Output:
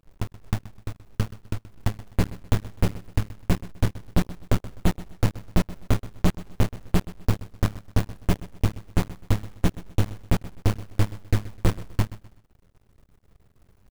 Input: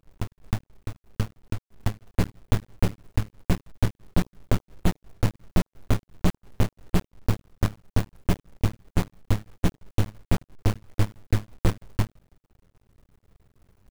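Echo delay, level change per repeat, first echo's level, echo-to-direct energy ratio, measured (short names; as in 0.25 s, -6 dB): 0.127 s, -10.0 dB, -17.0 dB, -16.5 dB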